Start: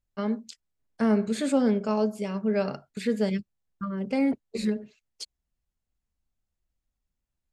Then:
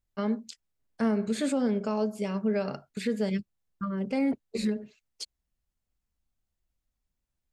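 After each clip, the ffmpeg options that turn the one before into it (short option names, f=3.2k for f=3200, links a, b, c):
-af "alimiter=limit=-19dB:level=0:latency=1:release=163"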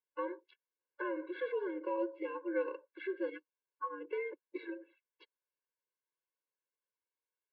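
-filter_complex "[0:a]highpass=f=190:t=q:w=0.5412,highpass=f=190:t=q:w=1.307,lowpass=f=3.4k:t=q:w=0.5176,lowpass=f=3.4k:t=q:w=0.7071,lowpass=f=3.4k:t=q:w=1.932,afreqshift=-91,acrossover=split=440 2600:gain=0.178 1 0.158[a][b][c];[a][b][c]amix=inputs=3:normalize=0,afftfilt=real='re*eq(mod(floor(b*sr/1024/290),2),1)':imag='im*eq(mod(floor(b*sr/1024/290),2),1)':win_size=1024:overlap=0.75,volume=1dB"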